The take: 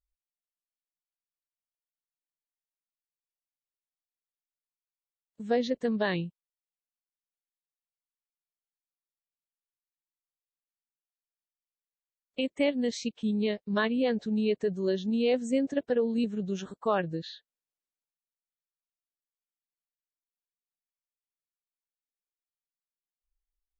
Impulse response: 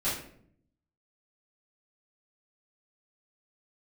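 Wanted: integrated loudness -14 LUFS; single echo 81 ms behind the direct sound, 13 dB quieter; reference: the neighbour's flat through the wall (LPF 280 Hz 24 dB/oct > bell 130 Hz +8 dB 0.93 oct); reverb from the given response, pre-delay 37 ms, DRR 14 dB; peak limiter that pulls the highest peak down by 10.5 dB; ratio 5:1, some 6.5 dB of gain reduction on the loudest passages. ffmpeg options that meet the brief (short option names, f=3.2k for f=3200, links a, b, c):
-filter_complex "[0:a]acompressor=threshold=-29dB:ratio=5,alimiter=level_in=7dB:limit=-24dB:level=0:latency=1,volume=-7dB,aecho=1:1:81:0.224,asplit=2[a][b];[1:a]atrim=start_sample=2205,adelay=37[c];[b][c]afir=irnorm=-1:irlink=0,volume=-22dB[d];[a][d]amix=inputs=2:normalize=0,lowpass=f=280:w=0.5412,lowpass=f=280:w=1.3066,equalizer=f=130:t=o:w=0.93:g=8,volume=24.5dB"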